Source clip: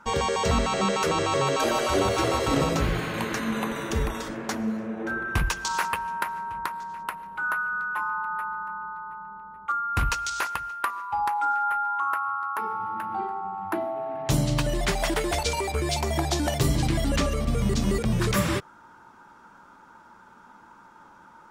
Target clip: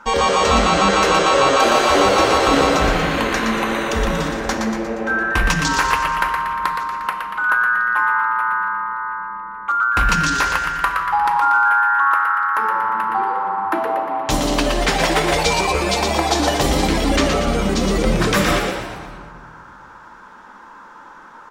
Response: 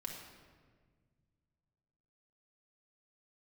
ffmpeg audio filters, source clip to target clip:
-filter_complex "[0:a]equalizer=frequency=120:width_type=o:width=1.7:gain=-11.5,asplit=7[link_01][link_02][link_03][link_04][link_05][link_06][link_07];[link_02]adelay=118,afreqshift=120,volume=-5.5dB[link_08];[link_03]adelay=236,afreqshift=240,volume=-11.3dB[link_09];[link_04]adelay=354,afreqshift=360,volume=-17.2dB[link_10];[link_05]adelay=472,afreqshift=480,volume=-23dB[link_11];[link_06]adelay=590,afreqshift=600,volume=-28.9dB[link_12];[link_07]adelay=708,afreqshift=720,volume=-34.7dB[link_13];[link_01][link_08][link_09][link_10][link_11][link_12][link_13]amix=inputs=7:normalize=0,asplit=2[link_14][link_15];[1:a]atrim=start_sample=2205,lowpass=7600[link_16];[link_15][link_16]afir=irnorm=-1:irlink=0,volume=3dB[link_17];[link_14][link_17]amix=inputs=2:normalize=0,volume=3.5dB"

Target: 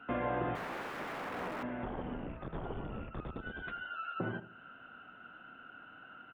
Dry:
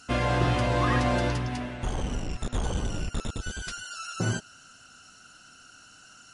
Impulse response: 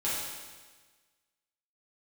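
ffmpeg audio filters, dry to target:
-filter_complex "[0:a]aresample=8000,aresample=44100,acompressor=threshold=-41dB:ratio=2,asettb=1/sr,asplit=3[link_01][link_02][link_03];[link_01]atrim=end=0.554[link_04];[link_02]atrim=start=0.55:end=1.63,asetpts=PTS-STARTPTS,afade=type=in:duration=0.004:curve=qsin,afade=type=out:start_time=1.076:duration=0.004:curve=qsin,aeval=exprs='(mod(59.6*val(0)+1,2)-1)/59.6':channel_layout=same[link_05];[link_03]atrim=start=1.626[link_06];[link_04][link_05]acrossfade=duration=0.004:curve1=hsin:curve2=qsin[link_07];[link_07][link_06]acrossfade=duration=0.004:curve1=qsin:curve2=hsin,acrossover=split=170 2100:gain=0.224 1 0.0708[link_08][link_09][link_10];[link_08][link_09][link_10]amix=inputs=3:normalize=0,asplit=2[link_11][link_12];[link_12]adelay=77,lowpass=frequency=1100:poles=1,volume=-12dB,asplit=2[link_13][link_14];[link_14]adelay=77,lowpass=frequency=1100:poles=1,volume=0.39,asplit=2[link_15][link_16];[link_16]adelay=77,lowpass=frequency=1100:poles=1,volume=0.39,asplit=2[link_17][link_18];[link_18]adelay=77,lowpass=frequency=1100:poles=1,volume=0.39[link_19];[link_11][link_13][link_15][link_17][link_19]amix=inputs=5:normalize=0,asettb=1/sr,asplit=3[link_20][link_21][link_22];[link_20]atrim=end=2.274[link_23];[link_21]atrim=start=2.27:end=3.36,asetpts=PTS-STARTPTS,afade=type=in:duration=0.004:curve=qsin,afade=type=out:start_time=1.086:duration=0.004:curve=qsin,afreqshift=-84[link_24];[link_22]atrim=start=3.356[link_25];[link_23][link_24]acrossfade=duration=0.004:curve1=hsin:curve2=qsin[link_26];[link_26][link_25]acrossfade=duration=0.004:curve1=qsin:curve2=hsin,volume=3.5dB"

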